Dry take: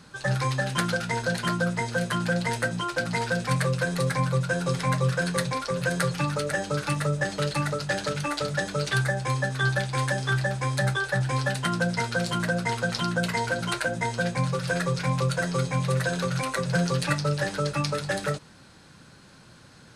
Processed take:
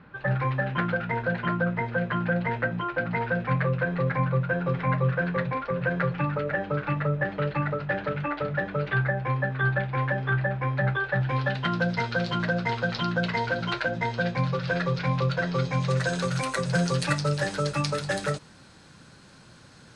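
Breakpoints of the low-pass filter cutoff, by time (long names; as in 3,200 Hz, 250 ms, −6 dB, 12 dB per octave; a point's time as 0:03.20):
low-pass filter 24 dB per octave
0:10.78 2,500 Hz
0:11.87 4,400 Hz
0:15.51 4,400 Hz
0:16.28 10,000 Hz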